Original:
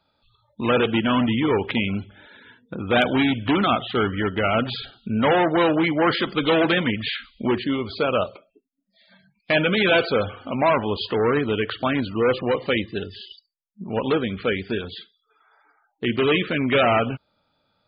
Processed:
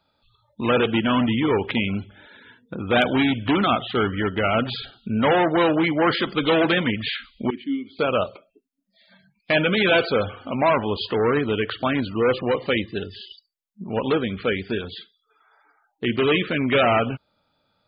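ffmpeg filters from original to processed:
-filter_complex "[0:a]asettb=1/sr,asplit=3[s0][s1][s2];[s0]atrim=end=7.504[s3];[s1]atrim=start=7.5:end=7.99,asetpts=PTS-STARTPTS,afade=t=in:d=0.004:c=qsin,afade=t=out:st=0.486:d=0.004:c=qsin,asplit=3[s4][s5][s6];[s4]bandpass=f=270:t=q:w=8,volume=1[s7];[s5]bandpass=f=2290:t=q:w=8,volume=0.501[s8];[s6]bandpass=f=3010:t=q:w=8,volume=0.355[s9];[s7][s8][s9]amix=inputs=3:normalize=0[s10];[s2]atrim=start=7.986[s11];[s3][s10]acrossfade=d=0.004:c1=hsin:c2=qsin[s12];[s12][s11]acrossfade=d=0.004:c1=qsin:c2=hsin"

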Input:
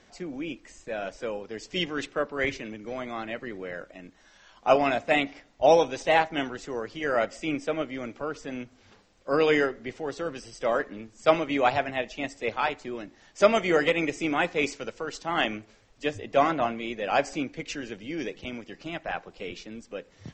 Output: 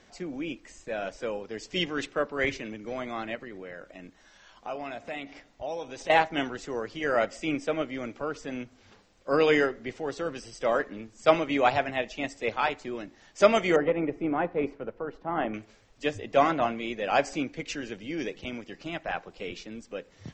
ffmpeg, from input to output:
-filter_complex "[0:a]asettb=1/sr,asplit=3[s0][s1][s2];[s0]atrim=end=3.354[s3];[s1]atrim=start=3.35:end=6.1,asetpts=PTS-STARTPTS,afade=t=in:d=0.004:c=qsin,afade=t=out:st=2.746:d=0.004:c=qsin,acompressor=threshold=0.0112:ratio=2.5:attack=3.2:release=140:knee=1:detection=peak[s4];[s2]atrim=start=6.096[s5];[s3][s4]acrossfade=d=0.004:c1=hsin:c2=qsin[s6];[s6][s5]acrossfade=d=0.004:c1=qsin:c2=hsin,asettb=1/sr,asplit=3[s7][s8][s9];[s7]atrim=end=13.764[s10];[s8]atrim=start=13.76:end=15.54,asetpts=PTS-STARTPTS,afade=t=in:d=0.004:c=qsin,afade=t=out:st=1.776:d=0.004:c=qsin,lowpass=1100[s11];[s9]atrim=start=15.536[s12];[s10][s11]acrossfade=d=0.004:c1=hsin:c2=qsin[s13];[s13][s12]acrossfade=d=0.004:c1=qsin:c2=hsin"

